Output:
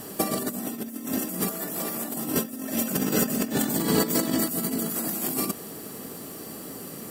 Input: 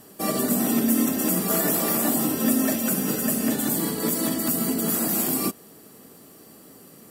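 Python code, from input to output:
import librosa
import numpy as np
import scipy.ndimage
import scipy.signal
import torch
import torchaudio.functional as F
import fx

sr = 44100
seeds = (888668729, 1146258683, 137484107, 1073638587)

y = fx.peak_eq(x, sr, hz=11000.0, db=-10.0, octaves=0.45, at=(2.9, 4.42))
y = fx.over_compress(y, sr, threshold_db=-29.0, ratio=-0.5)
y = fx.dmg_noise_colour(y, sr, seeds[0], colour='violet', level_db=-64.0)
y = y * librosa.db_to_amplitude(3.0)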